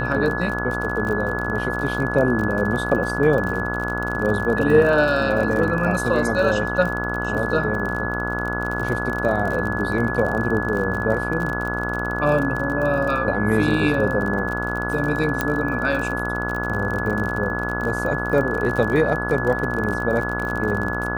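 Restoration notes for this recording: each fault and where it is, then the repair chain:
buzz 60 Hz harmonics 25 -27 dBFS
crackle 39 per s -26 dBFS
whine 1.7 kHz -26 dBFS
15.41 s: pop -6 dBFS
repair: de-click; de-hum 60 Hz, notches 25; band-stop 1.7 kHz, Q 30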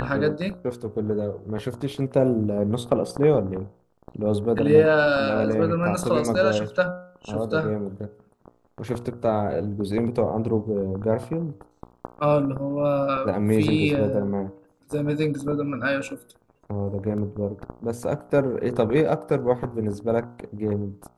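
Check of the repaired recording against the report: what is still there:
nothing left

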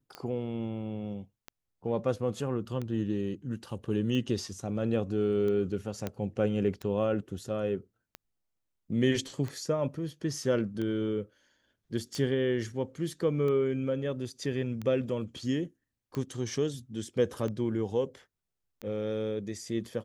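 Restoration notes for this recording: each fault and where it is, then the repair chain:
tick 45 rpm -24 dBFS
6.07 s: pop -19 dBFS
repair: de-click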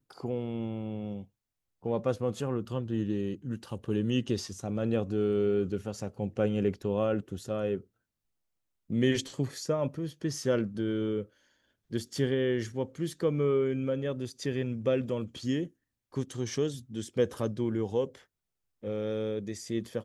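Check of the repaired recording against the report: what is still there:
6.07 s: pop

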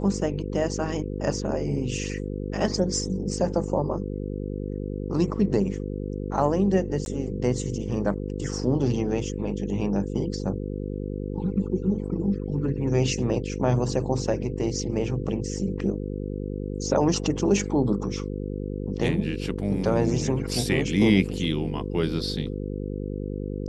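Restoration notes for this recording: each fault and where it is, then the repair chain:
buzz 50 Hz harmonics 10 -31 dBFS
7.05–7.06 s: dropout 11 ms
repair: de-hum 50 Hz, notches 10; interpolate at 7.05 s, 11 ms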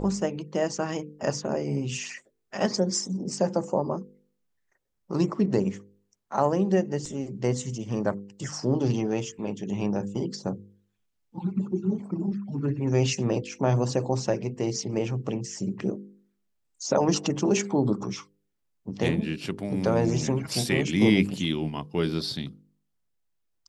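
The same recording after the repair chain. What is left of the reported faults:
nothing left

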